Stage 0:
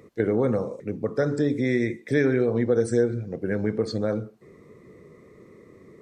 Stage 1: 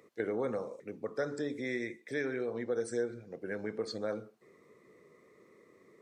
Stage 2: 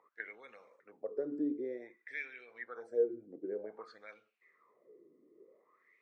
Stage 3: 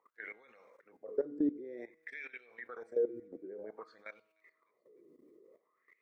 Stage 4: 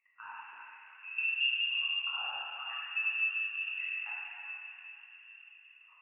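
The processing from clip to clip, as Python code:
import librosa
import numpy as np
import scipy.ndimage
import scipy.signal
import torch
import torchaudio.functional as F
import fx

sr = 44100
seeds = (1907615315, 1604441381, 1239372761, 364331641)

y1 = fx.highpass(x, sr, hz=600.0, slope=6)
y1 = fx.rider(y1, sr, range_db=10, speed_s=2.0)
y1 = F.gain(torch.from_numpy(y1), -7.0).numpy()
y2 = fx.wah_lfo(y1, sr, hz=0.53, low_hz=290.0, high_hz=2700.0, q=5.9)
y2 = F.gain(torch.from_numpy(y2), 6.0).numpy()
y3 = fx.level_steps(y2, sr, step_db=17)
y3 = fx.comb_fb(y3, sr, f0_hz=160.0, decay_s=1.7, harmonics='all', damping=0.0, mix_pct=40)
y3 = fx.echo_wet_highpass(y3, sr, ms=301, feedback_pct=51, hz=3400.0, wet_db=-22.0)
y3 = F.gain(torch.from_numpy(y3), 10.5).numpy()
y4 = fx.rev_plate(y3, sr, seeds[0], rt60_s=4.6, hf_ratio=0.25, predelay_ms=0, drr_db=-8.0)
y4 = fx.freq_invert(y4, sr, carrier_hz=3100)
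y4 = F.gain(torch.from_numpy(y4), -4.5).numpy()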